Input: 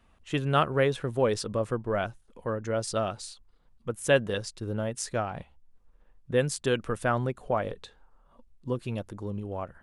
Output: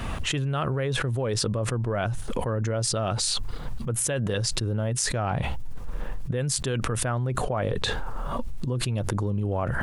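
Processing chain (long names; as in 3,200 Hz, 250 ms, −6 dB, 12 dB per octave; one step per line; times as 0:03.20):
parametric band 120 Hz +8.5 dB 0.68 octaves
envelope flattener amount 100%
level −9 dB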